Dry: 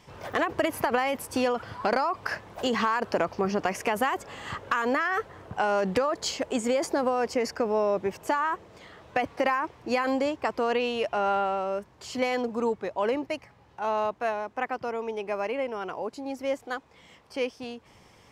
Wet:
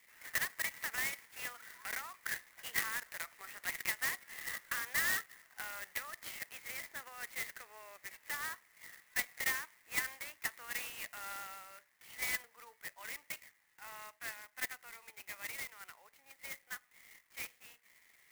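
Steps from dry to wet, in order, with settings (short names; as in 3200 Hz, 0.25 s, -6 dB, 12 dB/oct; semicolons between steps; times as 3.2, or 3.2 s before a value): ladder band-pass 2100 Hz, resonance 75%; on a send at -17 dB: reverb RT60 0.45 s, pre-delay 7 ms; on the sum: clock jitter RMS 0.059 ms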